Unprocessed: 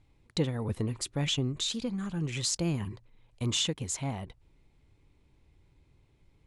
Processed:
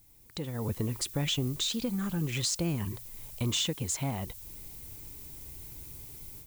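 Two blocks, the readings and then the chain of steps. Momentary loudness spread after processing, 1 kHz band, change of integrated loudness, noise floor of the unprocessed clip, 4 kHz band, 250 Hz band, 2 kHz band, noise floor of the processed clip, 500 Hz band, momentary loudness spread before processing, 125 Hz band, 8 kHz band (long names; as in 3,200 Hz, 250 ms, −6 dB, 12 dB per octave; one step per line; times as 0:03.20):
14 LU, +0.5 dB, −1.0 dB, −66 dBFS, 0.0 dB, 0.0 dB, +0.5 dB, −57 dBFS, −1.0 dB, 9 LU, 0.0 dB, +0.5 dB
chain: downward compressor 2 to 1, threshold −52 dBFS, peak gain reduction 15.5 dB
background noise violet −60 dBFS
automatic gain control gain up to 15 dB
level −2 dB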